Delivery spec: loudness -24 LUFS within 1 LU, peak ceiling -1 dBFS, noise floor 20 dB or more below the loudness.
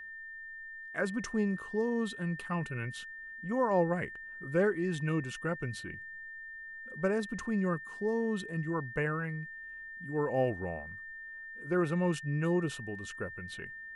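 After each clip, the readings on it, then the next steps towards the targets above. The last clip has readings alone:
steady tone 1800 Hz; tone level -43 dBFS; loudness -34.5 LUFS; peak -17.0 dBFS; loudness target -24.0 LUFS
-> notch 1800 Hz, Q 30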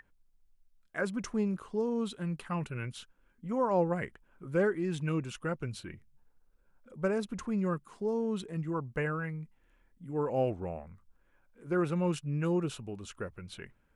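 steady tone none; loudness -34.0 LUFS; peak -17.5 dBFS; loudness target -24.0 LUFS
-> gain +10 dB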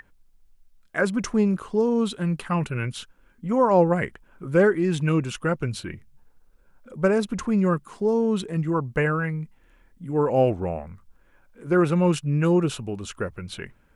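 loudness -24.0 LUFS; peak -7.5 dBFS; noise floor -59 dBFS

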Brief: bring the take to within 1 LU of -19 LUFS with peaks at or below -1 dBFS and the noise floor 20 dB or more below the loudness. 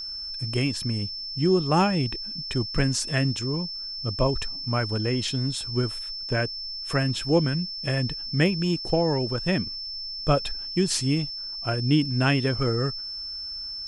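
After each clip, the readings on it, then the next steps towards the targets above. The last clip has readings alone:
ticks 41/s; steady tone 5300 Hz; tone level -32 dBFS; loudness -25.5 LUFS; peak -9.0 dBFS; loudness target -19.0 LUFS
-> de-click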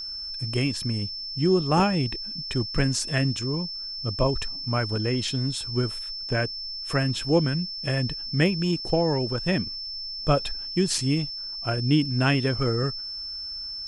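ticks 0.072/s; steady tone 5300 Hz; tone level -32 dBFS
-> notch 5300 Hz, Q 30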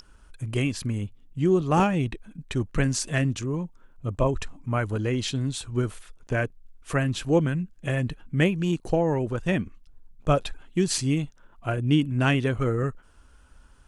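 steady tone none; loudness -26.5 LUFS; peak -9.5 dBFS; loudness target -19.0 LUFS
-> gain +7.5 dB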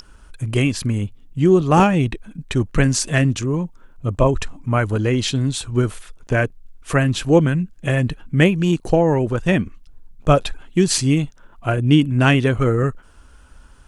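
loudness -19.0 LUFS; peak -2.0 dBFS; noise floor -47 dBFS

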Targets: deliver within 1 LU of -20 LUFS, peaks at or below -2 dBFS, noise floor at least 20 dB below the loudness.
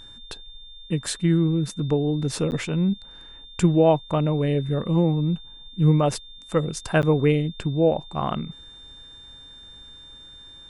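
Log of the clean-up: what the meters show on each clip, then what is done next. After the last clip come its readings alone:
dropouts 2; longest dropout 9.8 ms; steady tone 3600 Hz; tone level -43 dBFS; loudness -23.0 LUFS; peak -7.0 dBFS; loudness target -20.0 LUFS
-> interpolate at 2.51/7.02, 9.8 ms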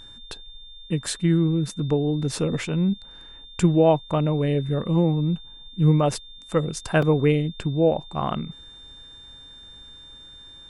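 dropouts 0; steady tone 3600 Hz; tone level -43 dBFS
-> notch 3600 Hz, Q 30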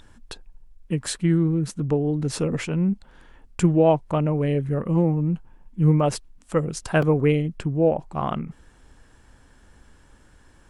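steady tone none; loudness -23.0 LUFS; peak -7.0 dBFS; loudness target -20.0 LUFS
-> gain +3 dB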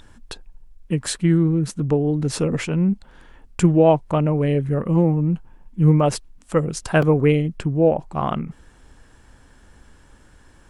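loudness -20.0 LUFS; peak -4.0 dBFS; noise floor -52 dBFS

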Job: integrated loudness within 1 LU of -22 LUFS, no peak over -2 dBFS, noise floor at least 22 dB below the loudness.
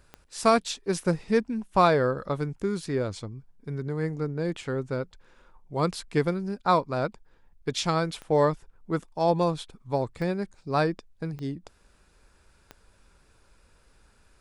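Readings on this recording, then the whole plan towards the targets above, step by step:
clicks 5; loudness -27.5 LUFS; peak -8.0 dBFS; loudness target -22.0 LUFS
-> de-click; gain +5.5 dB

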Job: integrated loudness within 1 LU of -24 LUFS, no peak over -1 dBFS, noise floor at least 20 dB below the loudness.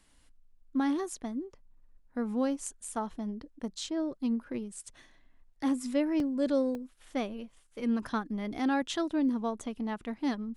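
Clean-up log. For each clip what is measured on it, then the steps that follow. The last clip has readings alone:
dropouts 2; longest dropout 1.2 ms; loudness -33.0 LUFS; peak -17.5 dBFS; loudness target -24.0 LUFS
-> interpolate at 6.2/6.75, 1.2 ms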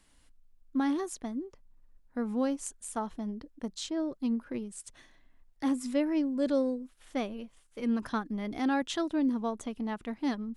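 dropouts 0; loudness -33.0 LUFS; peak -17.5 dBFS; loudness target -24.0 LUFS
-> gain +9 dB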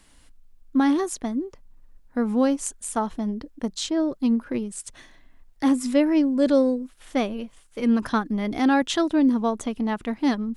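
loudness -24.0 LUFS; peak -8.5 dBFS; noise floor -55 dBFS

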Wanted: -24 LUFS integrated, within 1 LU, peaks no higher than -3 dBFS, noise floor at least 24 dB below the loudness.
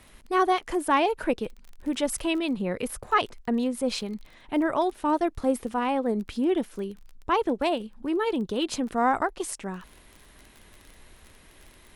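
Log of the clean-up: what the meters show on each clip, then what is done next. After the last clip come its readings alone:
ticks 22/s; loudness -27.5 LUFS; peak -11.0 dBFS; loudness target -24.0 LUFS
-> de-click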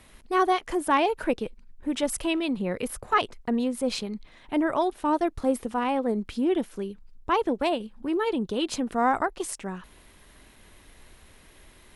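ticks 0/s; loudness -27.5 LUFS; peak -11.0 dBFS; loudness target -24.0 LUFS
-> gain +3.5 dB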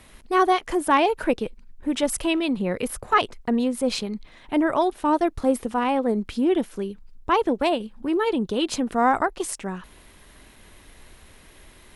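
loudness -24.0 LUFS; peak -7.5 dBFS; noise floor -51 dBFS

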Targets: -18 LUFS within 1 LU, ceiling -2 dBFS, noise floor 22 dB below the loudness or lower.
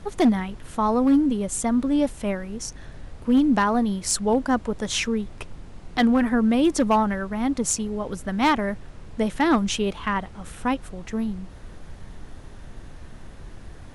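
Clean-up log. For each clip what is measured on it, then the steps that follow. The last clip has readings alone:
clipped 0.4%; flat tops at -12.5 dBFS; noise floor -43 dBFS; noise floor target -46 dBFS; loudness -23.5 LUFS; peak -12.5 dBFS; loudness target -18.0 LUFS
-> clip repair -12.5 dBFS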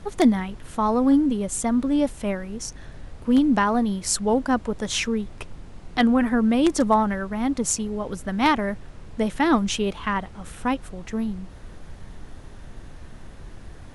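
clipped 0.0%; noise floor -43 dBFS; noise floor target -45 dBFS
-> noise print and reduce 6 dB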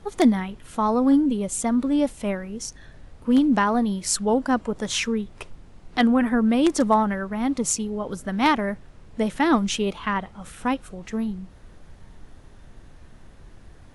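noise floor -48 dBFS; loudness -23.0 LUFS; peak -3.5 dBFS; loudness target -18.0 LUFS
-> gain +5 dB; limiter -2 dBFS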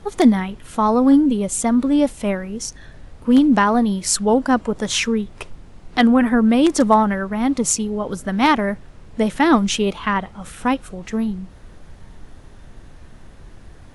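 loudness -18.0 LUFS; peak -2.0 dBFS; noise floor -43 dBFS

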